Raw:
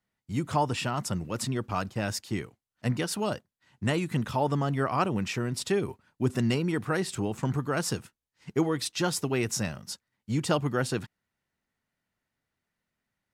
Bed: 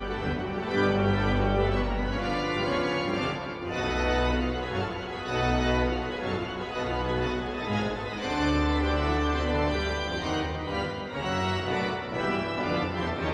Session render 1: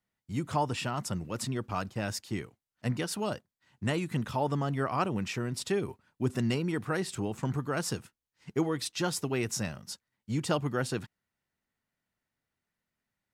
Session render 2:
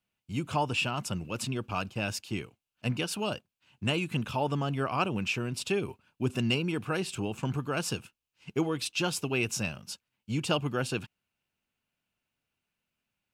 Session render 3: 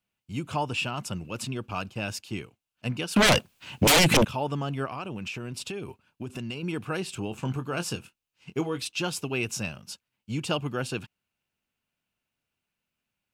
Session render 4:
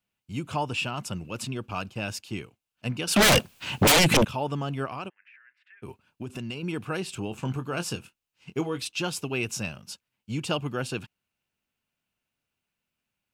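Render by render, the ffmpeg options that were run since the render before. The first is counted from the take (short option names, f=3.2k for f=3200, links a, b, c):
-af "volume=-3dB"
-af "equalizer=f=2.7k:t=o:w=0.46:g=11,bandreject=f=1.9k:w=6.1"
-filter_complex "[0:a]asettb=1/sr,asplit=3[a][b][c];[a]atrim=end=3.164[d];[b]atrim=start=3.16:end=4.25,asetpts=PTS-STARTPTS,afade=t=in:d=0.004:c=qsin,afade=t=out:st=1.086:d=0.004:c=qsin,aeval=exprs='0.178*sin(PI/2*7.94*val(0)/0.178)':c=same[e];[c]atrim=start=4.246[f];[d][e]acrossfade=d=0.004:c1=hsin:c2=qsin[g];[g][f]acrossfade=d=0.004:c1=qsin:c2=hsin,asettb=1/sr,asplit=3[h][i][j];[h]atrim=end=4.854[k];[i]atrim=start=4.85:end=6.63,asetpts=PTS-STARTPTS,afade=t=in:d=0.004:c=qsin,afade=t=out:st=1.776:d=0.004:c=qsin,acompressor=threshold=-31dB:ratio=6:attack=3.2:release=140:knee=1:detection=peak[l];[j]atrim=start=6.626[m];[k][l]acrossfade=d=0.004:c1=hsin:c2=qsin[n];[n][m]acrossfade=d=0.004:c1=qsin:c2=hsin,asettb=1/sr,asplit=3[o][p][q];[o]atrim=end=7.304[r];[p]atrim=start=7.3:end=8.82,asetpts=PTS-STARTPTS,afade=t=in:d=0.004:c=qsin,afade=t=out:st=1.516:d=0.004:c=qsin,asplit=2[s][t];[t]adelay=23,volume=-10.5dB[u];[s][u]amix=inputs=2:normalize=0,atrim=end_sample=67032[v];[q]atrim=start=8.816[w];[r][v]acrossfade=d=0.004:c1=hsin:c2=qsin[x];[x][w]acrossfade=d=0.004:c1=qsin:c2=hsin"
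-filter_complex "[0:a]asettb=1/sr,asplit=3[a][b][c];[a]atrim=end=3.074[d];[b]atrim=start=3.07:end=3.92,asetpts=PTS-STARTPTS,afade=t=in:d=0.004:c=qsin,afade=t=out:st=0.846:d=0.004:c=qsin,aeval=exprs='0.188*sin(PI/2*1.78*val(0)/0.188)':c=same[e];[c]atrim=start=3.916[f];[d][e]acrossfade=d=0.004:c1=hsin:c2=qsin[g];[g][f]acrossfade=d=0.004:c1=qsin:c2=hsin,asplit=3[h][i][j];[h]afade=t=out:st=5.08:d=0.02[k];[i]asuperpass=centerf=1800:order=4:qfactor=4.2,afade=t=in:st=5.08:d=0.02,afade=t=out:st=5.82:d=0.02[l];[j]afade=t=in:st=5.82:d=0.02[m];[k][l][m]amix=inputs=3:normalize=0"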